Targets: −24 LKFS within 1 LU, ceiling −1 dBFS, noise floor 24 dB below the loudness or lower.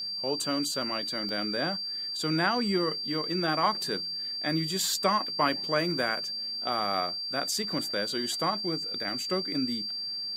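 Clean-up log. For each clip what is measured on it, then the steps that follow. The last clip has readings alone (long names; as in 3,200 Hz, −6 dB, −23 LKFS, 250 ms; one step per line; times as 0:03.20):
number of dropouts 1; longest dropout 1.1 ms; interfering tone 4,700 Hz; level of the tone −32 dBFS; integrated loudness −28.5 LKFS; sample peak −11.0 dBFS; target loudness −24.0 LKFS
→ repair the gap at 0:01.29, 1.1 ms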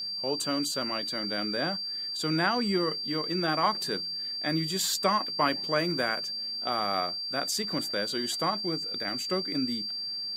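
number of dropouts 0; interfering tone 4,700 Hz; level of the tone −32 dBFS
→ notch filter 4,700 Hz, Q 30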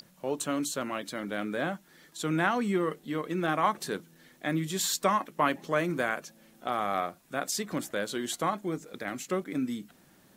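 interfering tone none found; integrated loudness −31.0 LKFS; sample peak −11.0 dBFS; target loudness −24.0 LKFS
→ level +7 dB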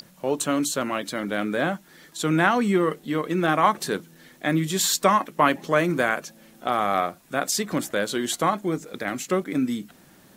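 integrated loudness −24.0 LKFS; sample peak −4.0 dBFS; background noise floor −54 dBFS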